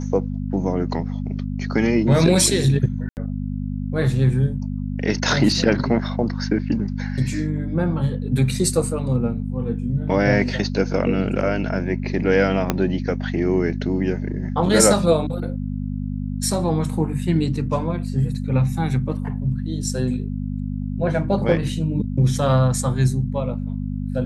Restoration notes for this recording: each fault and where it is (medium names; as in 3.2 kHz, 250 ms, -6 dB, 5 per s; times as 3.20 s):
hum 50 Hz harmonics 5 -26 dBFS
3.09–3.17 s: dropout 79 ms
12.70 s: pop -4 dBFS